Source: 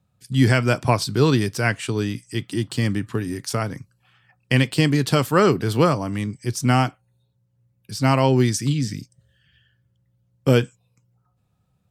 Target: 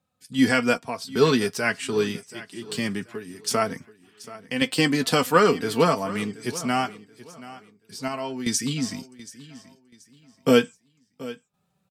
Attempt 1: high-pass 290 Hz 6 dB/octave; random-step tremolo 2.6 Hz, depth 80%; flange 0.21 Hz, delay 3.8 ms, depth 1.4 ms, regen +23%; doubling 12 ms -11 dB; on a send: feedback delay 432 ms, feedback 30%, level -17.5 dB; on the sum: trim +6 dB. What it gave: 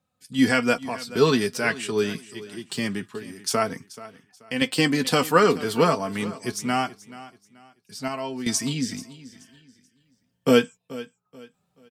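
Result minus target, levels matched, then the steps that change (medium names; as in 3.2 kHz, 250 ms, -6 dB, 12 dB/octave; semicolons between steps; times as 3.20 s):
echo 298 ms early
change: feedback delay 730 ms, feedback 30%, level -17.5 dB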